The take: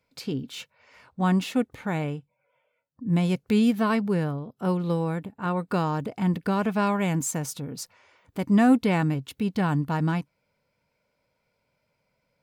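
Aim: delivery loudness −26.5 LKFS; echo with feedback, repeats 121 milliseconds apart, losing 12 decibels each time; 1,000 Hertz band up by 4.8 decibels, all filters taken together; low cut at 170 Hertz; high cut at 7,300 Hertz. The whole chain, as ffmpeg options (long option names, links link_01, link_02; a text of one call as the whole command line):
ffmpeg -i in.wav -af "highpass=170,lowpass=7300,equalizer=frequency=1000:width_type=o:gain=6,aecho=1:1:121|242|363:0.251|0.0628|0.0157,volume=-1dB" out.wav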